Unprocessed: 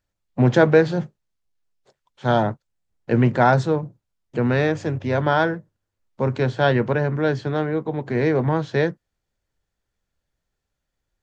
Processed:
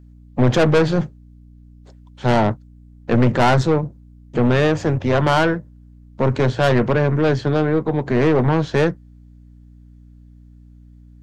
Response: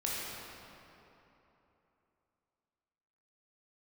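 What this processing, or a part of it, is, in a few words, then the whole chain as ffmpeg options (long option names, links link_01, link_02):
valve amplifier with mains hum: -filter_complex "[0:a]asettb=1/sr,asplit=3[link_01][link_02][link_03];[link_01]atrim=end=4.394[link_04];[link_02]atrim=start=4.39:end=5.39,asetpts=PTS-STARTPTS,afade=type=in:duration=0.004:curve=qsin,afade=type=out:start_time=0.996:duration=0.004:curve=qsin,equalizer=frequency=890:width_type=o:width=0.83:gain=3.5[link_05];[link_03]atrim=start=5.386[link_06];[link_04][link_05]acrossfade=duration=0.004:curve1=hsin:curve2=qsin[link_07];[link_07][link_06]acrossfade=duration=0.004:curve1=qsin:curve2=hsin,aeval=exprs='(tanh(8.91*val(0)+0.45)-tanh(0.45))/8.91':channel_layout=same,aeval=exprs='val(0)+0.00282*(sin(2*PI*60*n/s)+sin(2*PI*2*60*n/s)/2+sin(2*PI*3*60*n/s)/3+sin(2*PI*4*60*n/s)/4+sin(2*PI*5*60*n/s)/5)':channel_layout=same,volume=8dB"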